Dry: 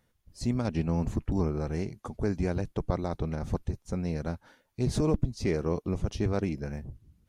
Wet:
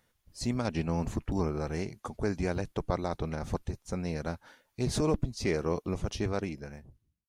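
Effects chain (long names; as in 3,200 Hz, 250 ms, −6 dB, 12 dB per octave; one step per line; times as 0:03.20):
fade-out on the ending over 1.16 s
low-shelf EQ 470 Hz −7.5 dB
level +3.5 dB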